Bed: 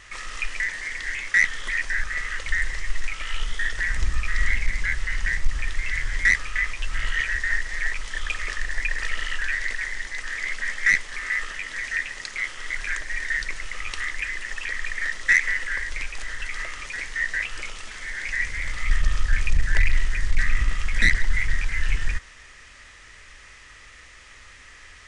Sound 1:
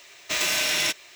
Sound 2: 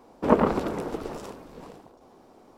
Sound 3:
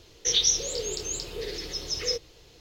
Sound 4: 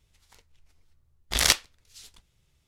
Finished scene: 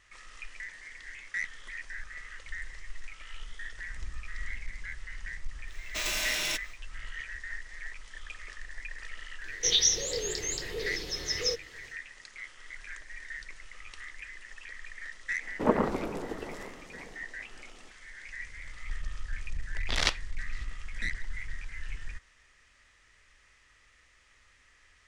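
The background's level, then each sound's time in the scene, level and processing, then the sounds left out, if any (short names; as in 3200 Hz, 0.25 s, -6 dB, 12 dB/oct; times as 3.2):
bed -15.5 dB
5.65 add 1 -7.5 dB, fades 0.10 s
9.38 add 3 -1.5 dB, fades 0.10 s
15.37 add 2 -5.5 dB, fades 0.05 s
18.57 add 4 -4 dB + LPF 4300 Hz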